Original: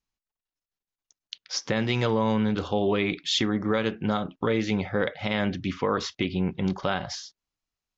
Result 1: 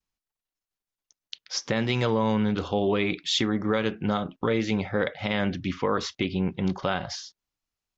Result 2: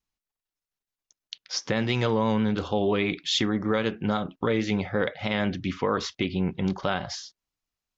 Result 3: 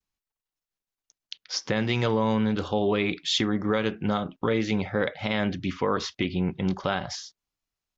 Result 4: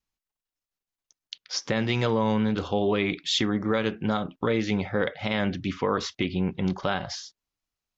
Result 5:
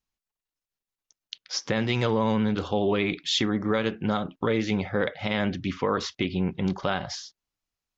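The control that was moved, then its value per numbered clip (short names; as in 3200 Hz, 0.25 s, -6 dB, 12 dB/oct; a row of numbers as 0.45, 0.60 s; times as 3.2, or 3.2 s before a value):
vibrato, rate: 0.68, 6.3, 0.44, 2.5, 15 Hz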